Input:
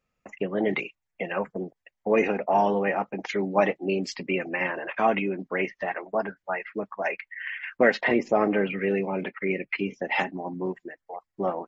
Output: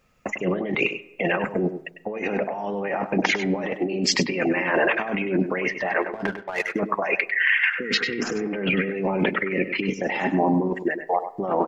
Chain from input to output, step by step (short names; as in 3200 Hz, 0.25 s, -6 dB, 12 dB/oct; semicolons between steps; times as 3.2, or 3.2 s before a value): 7.77–8.47 spectral repair 510–1800 Hz both; in parallel at +2 dB: limiter -16 dBFS, peak gain reduction 8 dB; on the sum: negative-ratio compressor -27 dBFS, ratio -1; 6.02–6.69 power-law curve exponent 1.4; echo 99 ms -10.5 dB; on a send at -20.5 dB: reverb RT60 0.85 s, pre-delay 97 ms; on the sum: gain +2.5 dB